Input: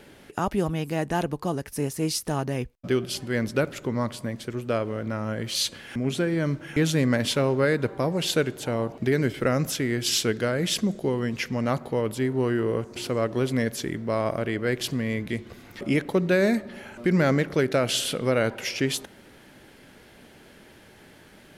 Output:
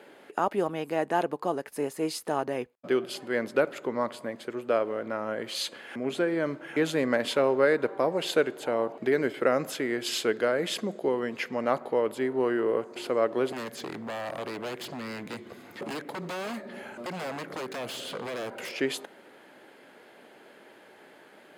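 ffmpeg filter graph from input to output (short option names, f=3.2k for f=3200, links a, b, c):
-filter_complex "[0:a]asettb=1/sr,asplit=3[a][b][c];[a]atrim=end=13.524[d];[b]atrim=start=13.52:end=18.73,asetpts=PTS-STARTPTS,afade=t=in:d=0.004:c=qsin,afade=t=out:st=5.206:d=0.004:c=qsin,acrossover=split=700|6400[e][f][g];[e]acompressor=threshold=-30dB:ratio=4[h];[f]acompressor=threshold=-32dB:ratio=4[i];[g]acompressor=threshold=-51dB:ratio=4[j];[h][i][j]amix=inputs=3:normalize=0,aeval=exprs='0.0335*(abs(mod(val(0)/0.0335+3,4)-2)-1)':c=same,bass=f=250:g=10,treble=f=4k:g=5[k];[c]atrim=start=18.726[l];[d][k]acrossfade=d=0.004:c1=hsin:c2=qsin[m];[m][l]acrossfade=d=0.004:c1=qsin:c2=hsin,highpass=420,highshelf=f=2.3k:g=-12,bandreject=f=5.7k:w=8,volume=3.5dB"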